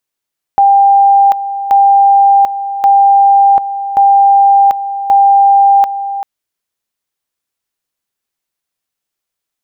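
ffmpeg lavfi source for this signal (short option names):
-f lavfi -i "aevalsrc='pow(10,(-3.5-12*gte(mod(t,1.13),0.74))/20)*sin(2*PI*795*t)':d=5.65:s=44100"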